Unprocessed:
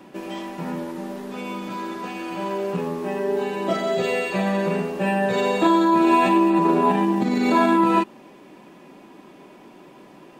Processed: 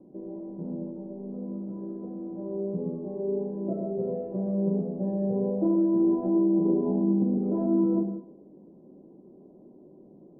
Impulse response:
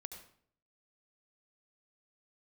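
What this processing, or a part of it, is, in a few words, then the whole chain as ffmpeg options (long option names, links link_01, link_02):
next room: -filter_complex "[0:a]lowpass=frequency=530:width=0.5412,lowpass=frequency=530:width=1.3066[link_01];[1:a]atrim=start_sample=2205[link_02];[link_01][link_02]afir=irnorm=-1:irlink=0"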